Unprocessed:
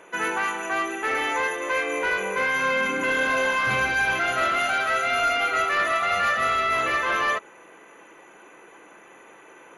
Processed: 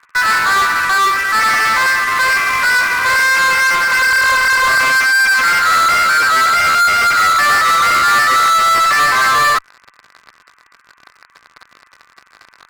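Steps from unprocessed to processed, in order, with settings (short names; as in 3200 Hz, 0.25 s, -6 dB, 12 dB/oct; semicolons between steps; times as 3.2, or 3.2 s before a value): LPF 1900 Hz 24 dB/oct; tempo 0.77×; elliptic high-pass 1100 Hz, stop band 40 dB; in parallel at -3 dB: fuzz box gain 40 dB, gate -48 dBFS; on the sum: gain +3 dB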